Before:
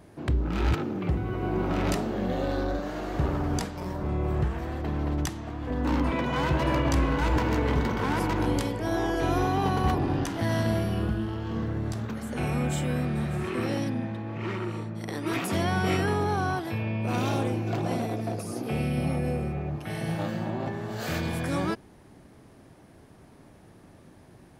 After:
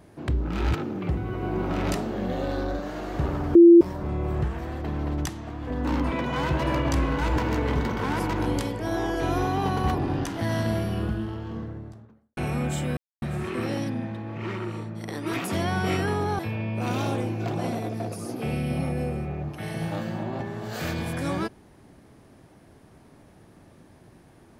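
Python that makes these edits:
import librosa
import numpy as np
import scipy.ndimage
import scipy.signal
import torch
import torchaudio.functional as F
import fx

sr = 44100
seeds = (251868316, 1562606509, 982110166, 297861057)

y = fx.studio_fade_out(x, sr, start_s=11.07, length_s=1.3)
y = fx.edit(y, sr, fx.bleep(start_s=3.55, length_s=0.26, hz=341.0, db=-7.5),
    fx.silence(start_s=12.97, length_s=0.25),
    fx.cut(start_s=16.39, length_s=0.27), tone=tone)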